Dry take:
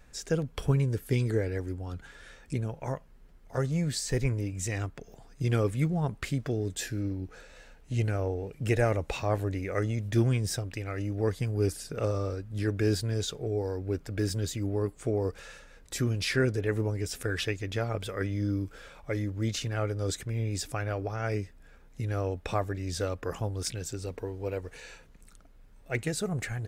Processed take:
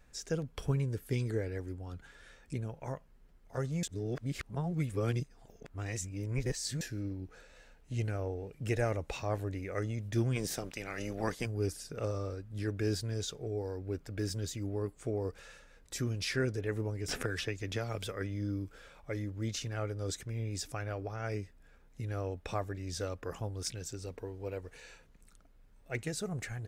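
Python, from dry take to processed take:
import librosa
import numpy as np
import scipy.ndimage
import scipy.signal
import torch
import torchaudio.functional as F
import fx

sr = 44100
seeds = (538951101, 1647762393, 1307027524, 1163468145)

y = fx.spec_clip(x, sr, under_db=18, at=(10.35, 11.45), fade=0.02)
y = fx.band_squash(y, sr, depth_pct=100, at=(17.08, 18.12))
y = fx.edit(y, sr, fx.reverse_span(start_s=3.83, length_s=2.98), tone=tone)
y = fx.dynamic_eq(y, sr, hz=5800.0, q=2.7, threshold_db=-54.0, ratio=4.0, max_db=4)
y = F.gain(torch.from_numpy(y), -6.0).numpy()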